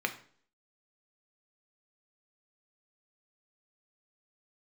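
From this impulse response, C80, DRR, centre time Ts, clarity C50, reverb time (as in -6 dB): 17.0 dB, 5.0 dB, 8 ms, 13.0 dB, 0.50 s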